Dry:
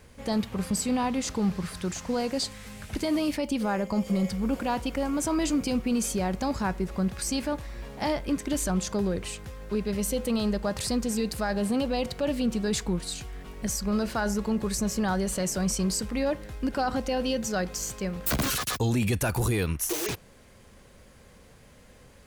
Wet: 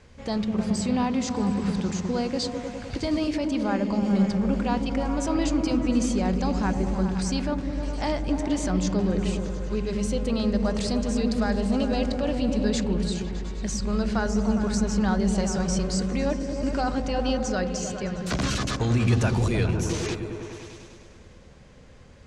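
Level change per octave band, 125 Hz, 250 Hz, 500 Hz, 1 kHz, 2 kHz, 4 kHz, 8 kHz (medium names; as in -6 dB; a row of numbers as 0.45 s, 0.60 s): +5.0 dB, +3.5 dB, +2.0 dB, +1.0 dB, +0.5 dB, 0.0 dB, -3.5 dB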